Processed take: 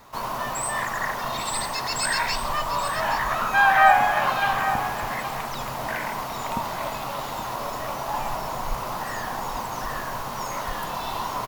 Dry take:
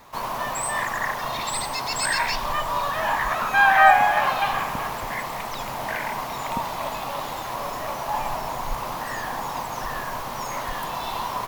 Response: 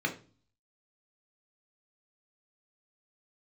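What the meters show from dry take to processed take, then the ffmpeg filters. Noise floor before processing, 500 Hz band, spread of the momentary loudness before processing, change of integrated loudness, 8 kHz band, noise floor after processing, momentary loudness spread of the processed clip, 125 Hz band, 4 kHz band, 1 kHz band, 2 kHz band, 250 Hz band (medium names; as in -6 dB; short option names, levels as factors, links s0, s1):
-32 dBFS, -0.5 dB, 12 LU, -1.0 dB, 0.0 dB, -32 dBFS, 11 LU, +1.5 dB, -0.5 dB, -1.0 dB, -1.5 dB, +1.0 dB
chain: -filter_complex "[0:a]aecho=1:1:824:0.299,asplit=2[s0][s1];[1:a]atrim=start_sample=2205[s2];[s1][s2]afir=irnorm=-1:irlink=0,volume=0.119[s3];[s0][s3]amix=inputs=2:normalize=0"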